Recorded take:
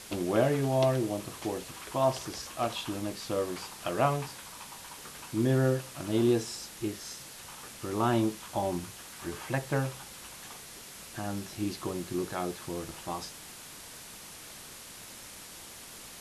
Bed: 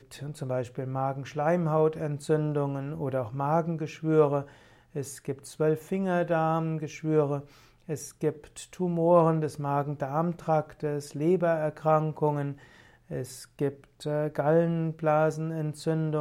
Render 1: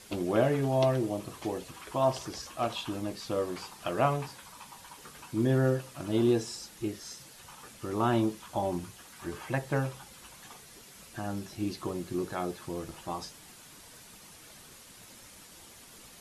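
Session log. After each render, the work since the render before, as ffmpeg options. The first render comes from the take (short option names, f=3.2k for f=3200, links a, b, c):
-af "afftdn=nr=7:nf=-47"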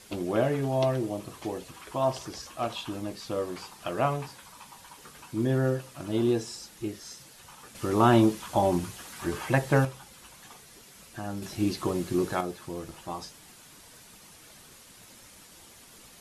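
-filter_complex "[0:a]asettb=1/sr,asplit=3[a][b][c];[a]atrim=end=11.424[d];[b]atrim=start=11.42:end=12.41,asetpts=PTS-STARTPTS,afade=t=in:d=0.004:c=qsin,afade=t=out:st=0.986:d=0.004:c=qsin,acontrast=53[e];[c]atrim=start=12.406[f];[d][e]acrossfade=d=0.004:c1=hsin:c2=qsin[g];[g][f]acrossfade=d=0.004:c1=qsin:c2=hsin,asplit=3[h][i][j];[h]atrim=end=7.752[k];[i]atrim=start=7.748:end=9.852,asetpts=PTS-STARTPTS,volume=7dB[l];[j]atrim=start=9.848[m];[k][l]acrossfade=d=0.004:c1=hsin:c2=hsin[n];[n][m]acrossfade=d=0.004:c1=hsin:c2=hsin"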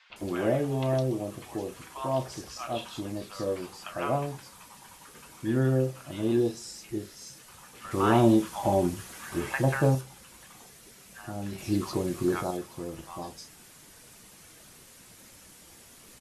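-filter_complex "[0:a]asplit=2[a][b];[b]adelay=31,volume=-12.5dB[c];[a][c]amix=inputs=2:normalize=0,acrossover=split=970|3800[d][e][f];[d]adelay=100[g];[f]adelay=160[h];[g][e][h]amix=inputs=3:normalize=0"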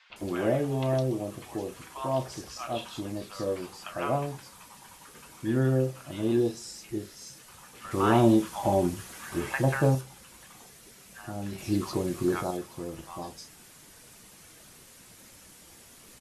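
-af anull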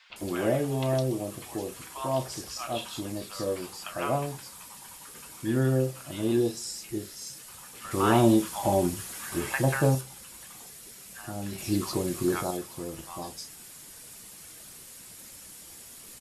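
-af "highshelf=f=4.6k:g=9,bandreject=f=6.1k:w=19"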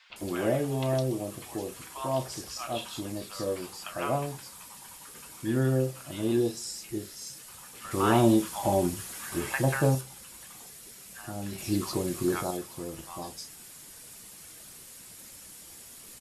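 -af "volume=-1dB"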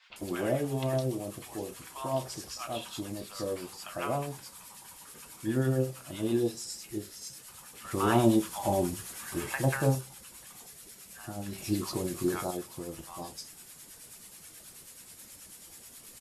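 -filter_complex "[0:a]acrossover=split=880[a][b];[a]aeval=exprs='val(0)*(1-0.5/2+0.5/2*cos(2*PI*9.3*n/s))':c=same[c];[b]aeval=exprs='val(0)*(1-0.5/2-0.5/2*cos(2*PI*9.3*n/s))':c=same[d];[c][d]amix=inputs=2:normalize=0"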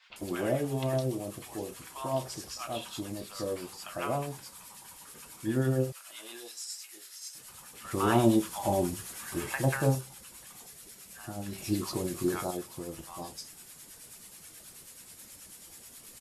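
-filter_complex "[0:a]asettb=1/sr,asplit=3[a][b][c];[a]atrim=end=5.924[d];[b]atrim=start=5.92:end=7.35,asetpts=PTS-STARTPTS,afade=t=in:d=0.004:c=qsin,afade=t=out:st=1.426:d=0.004:c=qsin,highpass=1.2k[e];[c]atrim=start=7.346[f];[d][e]acrossfade=d=0.004:c1=hsin:c2=qsin[g];[g][f]acrossfade=d=0.004:c1=qsin:c2=hsin"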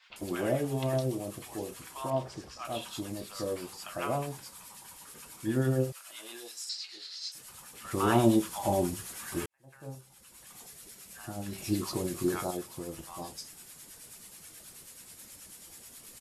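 -filter_complex "[0:a]asettb=1/sr,asplit=3[a][b][c];[a]atrim=end=2.104[d];[b]atrim=start=2.1:end=2.65,asetpts=PTS-STARTPTS,afade=t=in:d=0.004:c=qsin,afade=t=out:st=0.546:d=0.004:c=qsin,aemphasis=mode=reproduction:type=75fm[e];[c]atrim=start=2.646[f];[d][e]acrossfade=d=0.004:c1=hsin:c2=qsin[g];[g][f]acrossfade=d=0.004:c1=qsin:c2=hsin,asettb=1/sr,asplit=3[h][i][j];[h]atrim=end=6.694[k];[i]atrim=start=6.69:end=7.32,asetpts=PTS-STARTPTS,afade=t=in:d=0.004:c=qsin,afade=t=out:st=0.626:d=0.004:c=qsin,lowpass=f=4.3k:t=q:w=7.3[l];[j]atrim=start=7.316[m];[k][l]acrossfade=d=0.004:c1=hsin:c2=qsin[n];[n][m]acrossfade=d=0.004:c1=qsin:c2=hsin,asplit=2[o][p];[o]atrim=end=9.46,asetpts=PTS-STARTPTS,afade=t=out:st=9.456:d=0.004:c=hsin[q];[p]atrim=start=9.46,asetpts=PTS-STARTPTS,afade=t=in:d=1.15:c=qua[r];[q][r]concat=n=2:v=0:a=1"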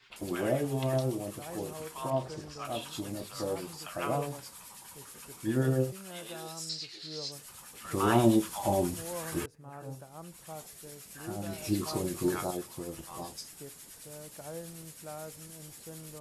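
-filter_complex "[1:a]volume=-19.5dB[a];[0:a][a]amix=inputs=2:normalize=0"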